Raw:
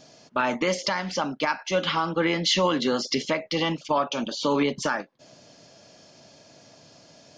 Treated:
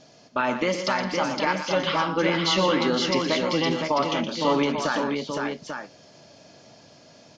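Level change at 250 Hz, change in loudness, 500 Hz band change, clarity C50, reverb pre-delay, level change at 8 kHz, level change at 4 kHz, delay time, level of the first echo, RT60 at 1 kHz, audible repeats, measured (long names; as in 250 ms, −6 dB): +2.0 dB, +1.0 dB, +2.0 dB, no reverb audible, no reverb audible, −1.5 dB, +1.0 dB, 119 ms, −9.5 dB, no reverb audible, 4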